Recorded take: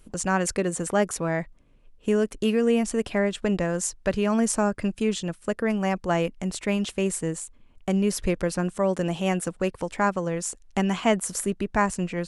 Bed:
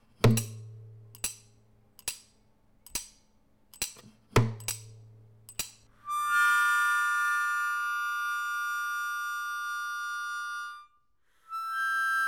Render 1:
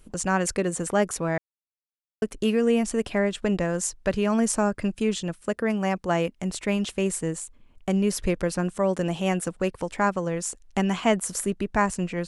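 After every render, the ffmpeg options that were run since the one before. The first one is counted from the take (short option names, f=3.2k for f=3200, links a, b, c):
-filter_complex "[0:a]asettb=1/sr,asplit=3[a][b][c];[a]atrim=end=5.414[d];[b]atrim=start=5.41:end=6.43,asetpts=PTS-STARTPTS,afade=t=in:d=0.004:c=qsin,afade=t=out:st=1.016:d=0.004:c=qsin,highpass=f=69:p=1[e];[c]atrim=start=6.426[f];[d][e]acrossfade=d=0.004:c1=hsin:c2=qsin[g];[g][f]acrossfade=d=0.004:c1=qsin:c2=hsin,asplit=3[h][i][j];[h]atrim=end=1.38,asetpts=PTS-STARTPTS,afade=t=out:st=1.376:d=0.004:c=hsin[k];[i]atrim=start=1.38:end=2.22,asetpts=PTS-STARTPTS,volume=0[l];[j]atrim=start=2.22,asetpts=PTS-STARTPTS,afade=t=in:d=0.004:c=hsin[m];[k][l][m]concat=n=3:v=0:a=1"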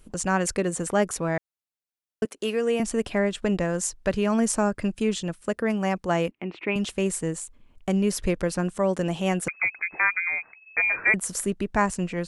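-filter_complex "[0:a]asettb=1/sr,asplit=3[a][b][c];[a]atrim=end=2.254[d];[b]atrim=start=2.25:end=2.8,asetpts=PTS-STARTPTS,afade=t=in:d=0.004:c=qsin,afade=t=out:st=0.546:d=0.004:c=qsin,highpass=350[e];[c]atrim=start=2.796[f];[d][e]acrossfade=d=0.004:c1=hsin:c2=qsin[g];[g][f]acrossfade=d=0.004:c1=qsin:c2=hsin,asettb=1/sr,asplit=3[h][i][j];[h]atrim=end=6.314[k];[i]atrim=start=6.31:end=6.76,asetpts=PTS-STARTPTS,afade=t=in:d=0.004:c=qsin,afade=t=out:st=0.446:d=0.004:c=qsin,highpass=190,equalizer=f=200:t=q:w=4:g=-4,equalizer=f=330:t=q:w=4:g=8,equalizer=f=590:t=q:w=4:g=-6,equalizer=f=1.6k:t=q:w=4:g=-4,equalizer=f=2.5k:t=q:w=4:g=8,lowpass=f=2.8k:w=0.5412,lowpass=f=2.8k:w=1.3066[l];[j]atrim=start=6.756[m];[k][l]acrossfade=d=0.004:c1=hsin:c2=qsin[n];[n][m]acrossfade=d=0.004:c1=qsin:c2=hsin,asettb=1/sr,asplit=3[o][p][q];[o]atrim=end=9.484[r];[p]atrim=start=9.48:end=11.14,asetpts=PTS-STARTPTS,afade=t=in:d=0.004:c=qsin,afade=t=out:st=1.656:d=0.004:c=qsin,lowpass=f=2.2k:t=q:w=0.5098,lowpass=f=2.2k:t=q:w=0.6013,lowpass=f=2.2k:t=q:w=0.9,lowpass=f=2.2k:t=q:w=2.563,afreqshift=-2600[s];[q]atrim=start=11.136[t];[r][s]acrossfade=d=0.004:c1=hsin:c2=qsin[u];[u][t]acrossfade=d=0.004:c1=qsin:c2=hsin"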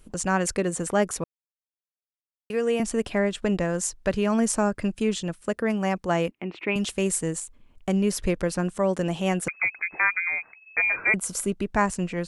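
-filter_complex "[0:a]asettb=1/sr,asplit=3[a][b][c];[a]atrim=end=6.554[d];[b]atrim=start=6.55:end=7.4,asetpts=PTS-STARTPTS,afade=t=in:d=0.004:c=qsin,afade=t=out:st=0.846:d=0.004:c=qsin,highshelf=f=4.6k:g=5.5[e];[c]atrim=start=7.396[f];[d][e]acrossfade=d=0.004:c1=hsin:c2=qsin[g];[g][f]acrossfade=d=0.004:c1=qsin:c2=hsin,asettb=1/sr,asplit=3[h][i][j];[h]atrim=end=10.964[k];[i]atrim=start=10.96:end=11.62,asetpts=PTS-STARTPTS,afade=t=in:d=0.004:c=qsin,afade=t=out:st=0.656:d=0.004:c=qsin,asuperstop=centerf=1800:order=4:qfactor=6.9[l];[j]atrim=start=11.616[m];[k][l]acrossfade=d=0.004:c1=hsin:c2=qsin[n];[n][m]acrossfade=d=0.004:c1=qsin:c2=hsin,asplit=3[o][p][q];[o]atrim=end=1.24,asetpts=PTS-STARTPTS,afade=t=out:st=1.236:d=0.004:c=hsin[r];[p]atrim=start=1.24:end=2.5,asetpts=PTS-STARTPTS,volume=0[s];[q]atrim=start=2.5,asetpts=PTS-STARTPTS,afade=t=in:d=0.004:c=hsin[t];[r][s][t]concat=n=3:v=0:a=1"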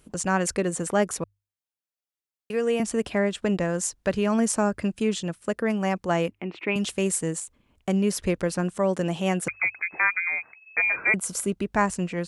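-af "highpass=52,bandreject=f=50:t=h:w=6,bandreject=f=100:t=h:w=6"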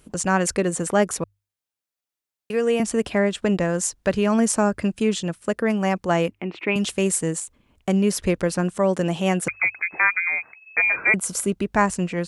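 -af "volume=3.5dB"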